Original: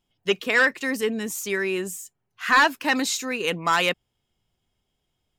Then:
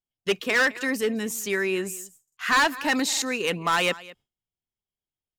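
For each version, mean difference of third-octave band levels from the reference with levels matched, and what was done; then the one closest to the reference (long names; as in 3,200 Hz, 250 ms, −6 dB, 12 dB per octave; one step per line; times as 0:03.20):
3.0 dB: on a send: single-tap delay 209 ms −21 dB
on the sum: noise gate with hold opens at −42 dBFS
hard clipping −17 dBFS, distortion −13 dB
buffer that repeats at 0:02.23/0:03.08, samples 2,048, times 2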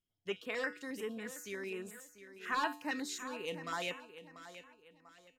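5.0 dB: high-shelf EQ 8,800 Hz −5 dB
tuned comb filter 98 Hz, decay 0.44 s, harmonics odd, mix 70%
repeating echo 692 ms, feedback 35%, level −13 dB
notch on a step sequencer 11 Hz 880–5,900 Hz
level −6 dB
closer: first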